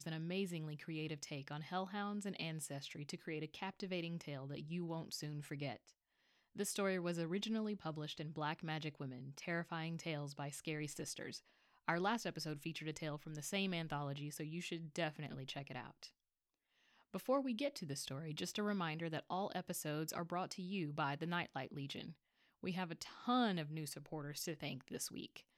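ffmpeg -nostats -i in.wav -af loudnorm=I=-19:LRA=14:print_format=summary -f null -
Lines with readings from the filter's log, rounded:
Input Integrated:    -43.6 LUFS
Input True Peak:     -21.0 dBTP
Input LRA:             2.6 LU
Input Threshold:     -53.7 LUFS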